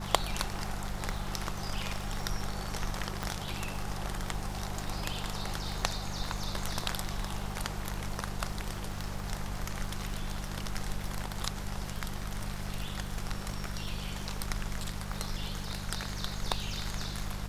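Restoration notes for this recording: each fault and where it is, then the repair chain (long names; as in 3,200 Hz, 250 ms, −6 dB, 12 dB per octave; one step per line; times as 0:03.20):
surface crackle 50 per second −41 dBFS
mains hum 50 Hz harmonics 4 −40 dBFS
0:03.23: click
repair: click removal
hum removal 50 Hz, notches 4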